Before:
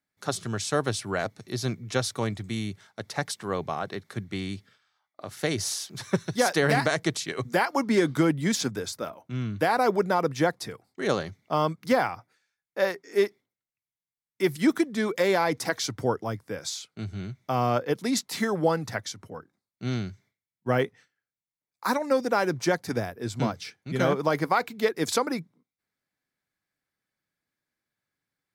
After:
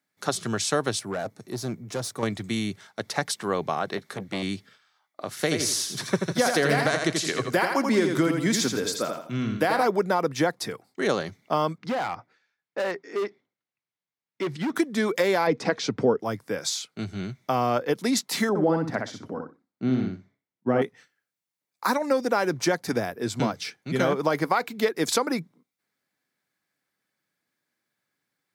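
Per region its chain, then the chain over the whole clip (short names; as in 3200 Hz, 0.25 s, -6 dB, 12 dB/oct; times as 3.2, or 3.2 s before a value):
0.99–2.23 half-wave gain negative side -3 dB + tube stage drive 27 dB, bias 0.25 + bell 3100 Hz -7.5 dB 2 oct
3.97–4.43 doubler 15 ms -13 dB + core saturation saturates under 730 Hz
5.31–9.87 notch 850 Hz, Q 11 + feedback echo 83 ms, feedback 32%, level -6 dB
11.78–14.76 compressor 2:1, threshold -26 dBFS + air absorption 150 m + overloaded stage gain 28.5 dB
15.47–16.2 air absorption 120 m + small resonant body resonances 210/430/2500 Hz, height 9 dB, ringing for 25 ms
18.49–20.82 LPF 1200 Hz 6 dB/oct + bell 270 Hz +7 dB 0.58 oct + feedback echo 62 ms, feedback 17%, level -4.5 dB
whole clip: HPF 150 Hz 12 dB/oct; compressor 2:1, threshold -28 dBFS; gain +5.5 dB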